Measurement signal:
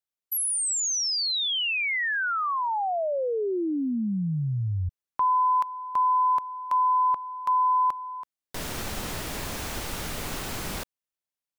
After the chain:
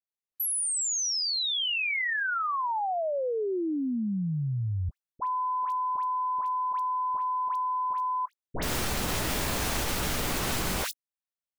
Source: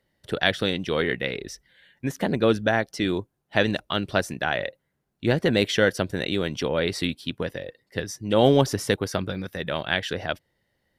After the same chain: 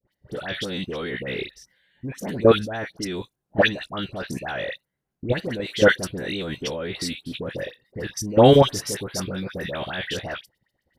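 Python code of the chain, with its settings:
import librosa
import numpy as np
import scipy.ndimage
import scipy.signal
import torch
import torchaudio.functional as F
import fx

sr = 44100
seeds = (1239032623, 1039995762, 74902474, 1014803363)

y = fx.doubler(x, sr, ms=16.0, db=-12.0)
y = fx.level_steps(y, sr, step_db=18)
y = fx.dispersion(y, sr, late='highs', ms=84.0, hz=1500.0)
y = y * librosa.db_to_amplitude(7.0)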